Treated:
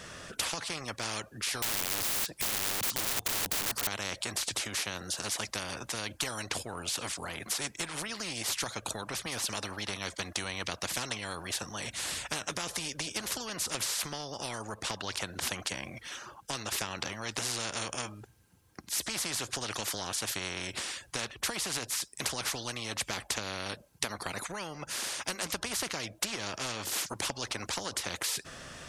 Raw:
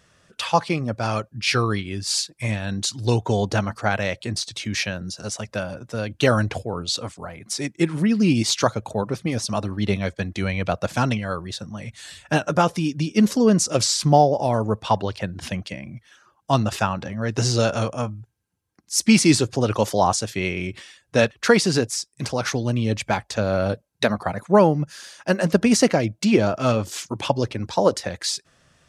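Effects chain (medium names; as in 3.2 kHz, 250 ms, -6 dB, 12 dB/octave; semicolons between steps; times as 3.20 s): compression 6:1, threshold -24 dBFS, peak gain reduction 14 dB; 1.62–3.87 s: integer overflow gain 29.5 dB; spectrum-flattening compressor 4:1; trim -3 dB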